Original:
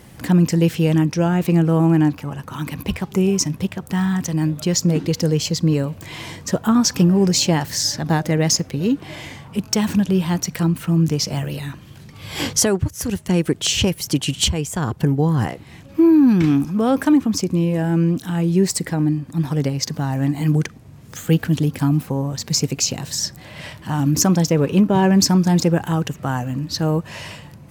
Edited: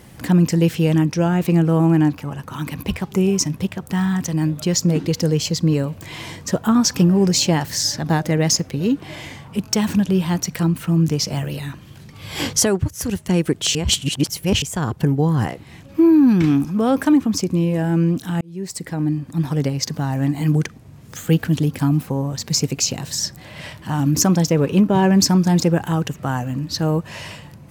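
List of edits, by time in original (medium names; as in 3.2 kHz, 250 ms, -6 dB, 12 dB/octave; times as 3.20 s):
13.75–14.62 s: reverse
18.41–19.23 s: fade in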